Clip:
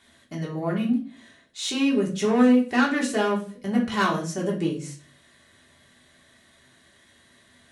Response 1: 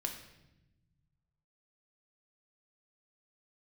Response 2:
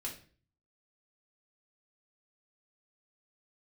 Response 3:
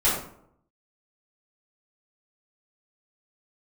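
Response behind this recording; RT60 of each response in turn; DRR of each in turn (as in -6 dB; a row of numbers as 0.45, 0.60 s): 2; 0.95, 0.45, 0.70 s; 2.0, -3.5, -11.5 dB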